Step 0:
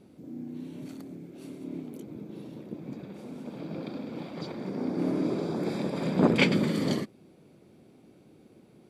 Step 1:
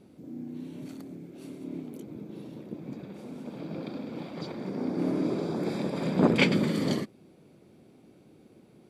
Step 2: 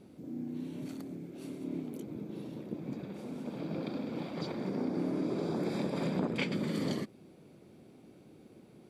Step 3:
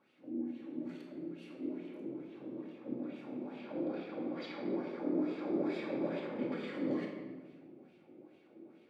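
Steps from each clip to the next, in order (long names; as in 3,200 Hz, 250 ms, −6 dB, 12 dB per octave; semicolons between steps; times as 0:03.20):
no processing that can be heard
downward compressor 10 to 1, threshold −29 dBFS, peak gain reduction 13.5 dB
LFO wah 2.3 Hz 340–2,900 Hz, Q 3; rectangular room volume 1,100 cubic metres, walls mixed, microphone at 2.3 metres; level +1.5 dB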